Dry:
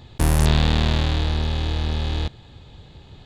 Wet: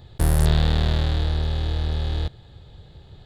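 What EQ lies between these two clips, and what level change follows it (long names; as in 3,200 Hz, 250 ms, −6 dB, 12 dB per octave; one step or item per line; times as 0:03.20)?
graphic EQ with 15 bands 250 Hz −8 dB, 1,000 Hz −6 dB, 2,500 Hz −8 dB, 6,300 Hz −8 dB
0.0 dB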